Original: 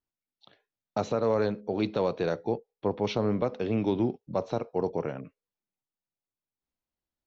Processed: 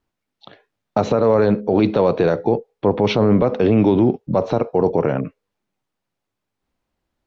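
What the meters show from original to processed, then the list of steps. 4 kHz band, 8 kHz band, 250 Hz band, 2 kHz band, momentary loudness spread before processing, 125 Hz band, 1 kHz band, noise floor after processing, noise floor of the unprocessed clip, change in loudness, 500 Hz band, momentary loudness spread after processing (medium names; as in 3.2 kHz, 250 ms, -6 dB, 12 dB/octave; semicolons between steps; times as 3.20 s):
+9.5 dB, no reading, +13.0 dB, +10.5 dB, 7 LU, +13.0 dB, +11.0 dB, -81 dBFS, under -85 dBFS, +12.0 dB, +11.5 dB, 7 LU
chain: low-pass 2.1 kHz 6 dB/octave; loudness maximiser +23 dB; trim -5.5 dB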